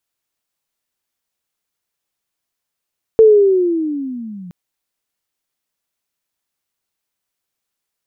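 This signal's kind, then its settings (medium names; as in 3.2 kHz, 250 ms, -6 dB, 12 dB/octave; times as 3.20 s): sweep linear 450 Hz -> 170 Hz -3 dBFS -> -30 dBFS 1.32 s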